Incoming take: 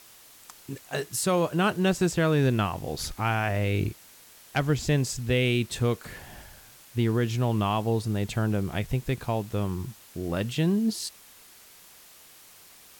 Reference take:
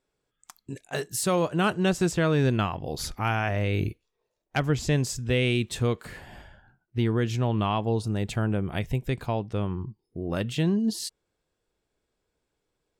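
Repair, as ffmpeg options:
-af "afwtdn=0.0028"

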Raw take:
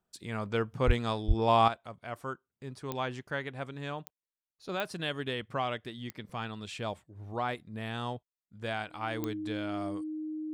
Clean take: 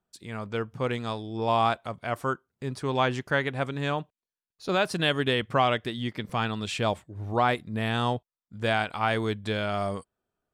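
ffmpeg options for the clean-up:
-filter_complex "[0:a]adeclick=t=4,bandreject=f=310:w=30,asplit=3[s0][s1][s2];[s0]afade=t=out:st=0.86:d=0.02[s3];[s1]highpass=f=140:w=0.5412,highpass=f=140:w=1.3066,afade=t=in:st=0.86:d=0.02,afade=t=out:st=0.98:d=0.02[s4];[s2]afade=t=in:st=0.98:d=0.02[s5];[s3][s4][s5]amix=inputs=3:normalize=0,asplit=3[s6][s7][s8];[s6]afade=t=out:st=1.27:d=0.02[s9];[s7]highpass=f=140:w=0.5412,highpass=f=140:w=1.3066,afade=t=in:st=1.27:d=0.02,afade=t=out:st=1.39:d=0.02[s10];[s8]afade=t=in:st=1.39:d=0.02[s11];[s9][s10][s11]amix=inputs=3:normalize=0,asetnsamples=n=441:p=0,asendcmd='1.68 volume volume 9.5dB',volume=1"

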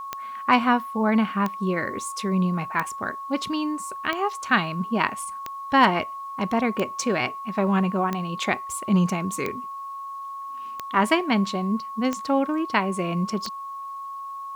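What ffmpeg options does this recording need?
-af "adeclick=t=4,bandreject=f=1100:w=30,agate=range=0.0891:threshold=0.0447"

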